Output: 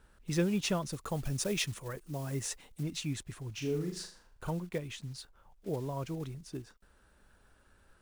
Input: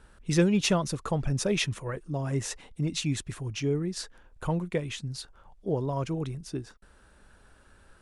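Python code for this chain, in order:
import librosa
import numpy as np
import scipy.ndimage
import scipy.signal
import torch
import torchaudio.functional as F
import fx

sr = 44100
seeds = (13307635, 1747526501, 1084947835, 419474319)

y = fx.block_float(x, sr, bits=5)
y = fx.high_shelf(y, sr, hz=5000.0, db=8.0, at=(0.92, 2.83))
y = fx.room_flutter(y, sr, wall_m=6.8, rt60_s=0.41, at=(3.54, 4.5))
y = y * 10.0 ** (-7.0 / 20.0)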